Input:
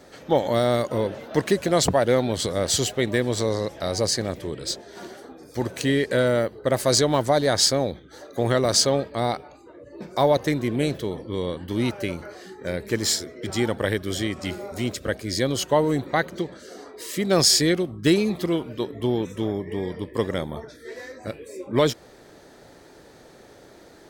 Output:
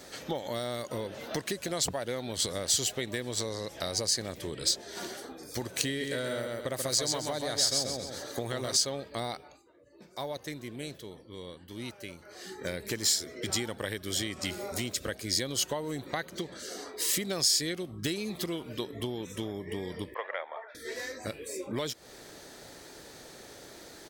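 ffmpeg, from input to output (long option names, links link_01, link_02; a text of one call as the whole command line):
ffmpeg -i in.wav -filter_complex "[0:a]asplit=3[link_01][link_02][link_03];[link_01]afade=type=out:start_time=6:duration=0.02[link_04];[link_02]aecho=1:1:133|266|399|532:0.631|0.183|0.0531|0.0154,afade=type=in:start_time=6:duration=0.02,afade=type=out:start_time=8.75:duration=0.02[link_05];[link_03]afade=type=in:start_time=8.75:duration=0.02[link_06];[link_04][link_05][link_06]amix=inputs=3:normalize=0,asettb=1/sr,asplit=3[link_07][link_08][link_09];[link_07]atrim=end=20.144[link_10];[link_08]atrim=start=20.14:end=20.75,asetpts=PTS-STARTPTS,afade=type=in:duration=0.004:curve=qsin,afade=type=out:start_time=0.606:duration=0.004:curve=qsin,asuperpass=centerf=1200:order=8:qfactor=0.62[link_11];[link_09]atrim=start=20.746[link_12];[link_10][link_11]acrossfade=duration=0.004:curve1=hsin:curve2=qsin[link_13];[link_13][link_12]acrossfade=duration=0.004:curve1=qsin:curve2=hsin,asplit=3[link_14][link_15][link_16];[link_14]atrim=end=9.64,asetpts=PTS-STARTPTS,afade=type=out:start_time=9.33:duration=0.31:silence=0.188365[link_17];[link_15]atrim=start=9.64:end=12.25,asetpts=PTS-STARTPTS,volume=-14.5dB[link_18];[link_16]atrim=start=12.25,asetpts=PTS-STARTPTS,afade=type=in:duration=0.31:silence=0.188365[link_19];[link_17][link_18][link_19]concat=n=3:v=0:a=1,acompressor=threshold=-30dB:ratio=6,highshelf=frequency=2300:gain=11,volume=-2.5dB" out.wav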